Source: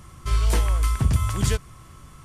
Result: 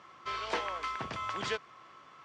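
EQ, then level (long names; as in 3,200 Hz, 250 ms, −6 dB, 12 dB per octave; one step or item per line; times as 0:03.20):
band-pass filter 540–6,700 Hz
high-frequency loss of the air 180 metres
0.0 dB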